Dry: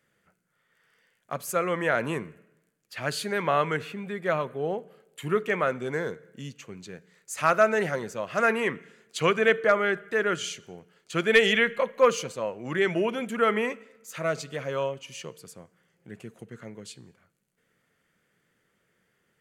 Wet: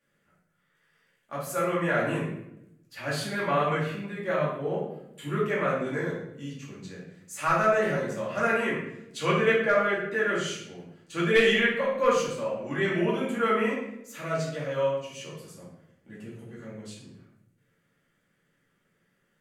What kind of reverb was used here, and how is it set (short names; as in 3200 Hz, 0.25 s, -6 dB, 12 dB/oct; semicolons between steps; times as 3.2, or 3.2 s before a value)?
shoebox room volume 200 m³, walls mixed, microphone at 2.4 m; gain -9 dB